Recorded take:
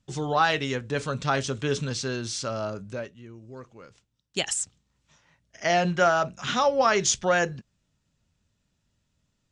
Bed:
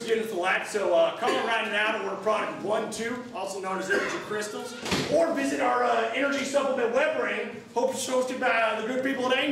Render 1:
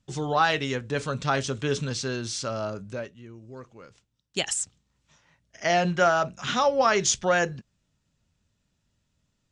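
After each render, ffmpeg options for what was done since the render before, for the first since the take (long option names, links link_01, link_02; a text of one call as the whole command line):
ffmpeg -i in.wav -af anull out.wav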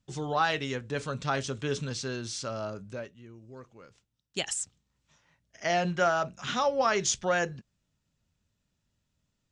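ffmpeg -i in.wav -af "volume=-4.5dB" out.wav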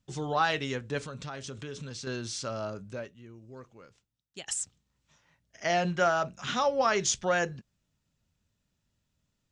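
ffmpeg -i in.wav -filter_complex "[0:a]asettb=1/sr,asplit=3[link_01][link_02][link_03];[link_01]atrim=end=0.984[link_04];[link_02]atrim=start=0.98:end=2.07,asetpts=PTS-STARTPTS,afade=type=in:duration=0.004:curve=qsin,afade=type=out:start_time=1.086:duration=0.004:curve=qsin,acompressor=threshold=-37dB:ratio=4:attack=3.2:release=140:knee=1:detection=peak[link_05];[link_03]atrim=start=2.066[link_06];[link_04][link_05]acrossfade=duration=0.004:curve1=hsin:curve2=qsin[link_07];[link_07][link_06]acrossfade=duration=0.004:curve1=qsin:curve2=hsin,asplit=2[link_08][link_09];[link_08]atrim=end=4.48,asetpts=PTS-STARTPTS,afade=type=out:start_time=3.74:duration=0.74:silence=0.177828[link_10];[link_09]atrim=start=4.48,asetpts=PTS-STARTPTS,afade=type=in:duration=0.004:curve=hsin:silence=0.177828[link_11];[link_10][link_11]concat=n=2:v=0:a=1" out.wav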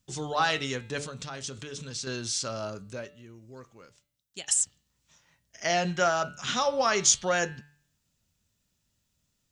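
ffmpeg -i in.wav -af "highshelf=frequency=4100:gain=10.5,bandreject=frequency=145.7:width_type=h:width=4,bandreject=frequency=291.4:width_type=h:width=4,bandreject=frequency=437.1:width_type=h:width=4,bandreject=frequency=582.8:width_type=h:width=4,bandreject=frequency=728.5:width_type=h:width=4,bandreject=frequency=874.2:width_type=h:width=4,bandreject=frequency=1019.9:width_type=h:width=4,bandreject=frequency=1165.6:width_type=h:width=4,bandreject=frequency=1311.3:width_type=h:width=4,bandreject=frequency=1457:width_type=h:width=4,bandreject=frequency=1602.7:width_type=h:width=4,bandreject=frequency=1748.4:width_type=h:width=4,bandreject=frequency=1894.1:width_type=h:width=4,bandreject=frequency=2039.8:width_type=h:width=4,bandreject=frequency=2185.5:width_type=h:width=4,bandreject=frequency=2331.2:width_type=h:width=4,bandreject=frequency=2476.9:width_type=h:width=4,bandreject=frequency=2622.6:width_type=h:width=4,bandreject=frequency=2768.3:width_type=h:width=4,bandreject=frequency=2914:width_type=h:width=4,bandreject=frequency=3059.7:width_type=h:width=4,bandreject=frequency=3205.4:width_type=h:width=4,bandreject=frequency=3351.1:width_type=h:width=4,bandreject=frequency=3496.8:width_type=h:width=4,bandreject=frequency=3642.5:width_type=h:width=4,bandreject=frequency=3788.2:width_type=h:width=4,bandreject=frequency=3933.9:width_type=h:width=4,bandreject=frequency=4079.6:width_type=h:width=4,bandreject=frequency=4225.3:width_type=h:width=4,bandreject=frequency=4371:width_type=h:width=4,bandreject=frequency=4516.7:width_type=h:width=4,bandreject=frequency=4662.4:width_type=h:width=4" out.wav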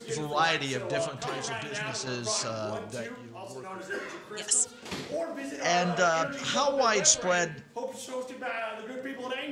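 ffmpeg -i in.wav -i bed.wav -filter_complex "[1:a]volume=-10dB[link_01];[0:a][link_01]amix=inputs=2:normalize=0" out.wav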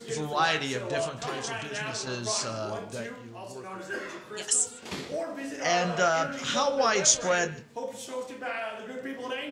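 ffmpeg -i in.wav -filter_complex "[0:a]asplit=2[link_01][link_02];[link_02]adelay=26,volume=-11dB[link_03];[link_01][link_03]amix=inputs=2:normalize=0,aecho=1:1:152:0.0708" out.wav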